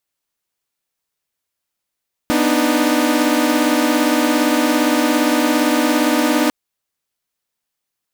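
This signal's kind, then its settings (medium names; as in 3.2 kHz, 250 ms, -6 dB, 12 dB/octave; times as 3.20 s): chord B3/D4/D#4 saw, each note -15.5 dBFS 4.20 s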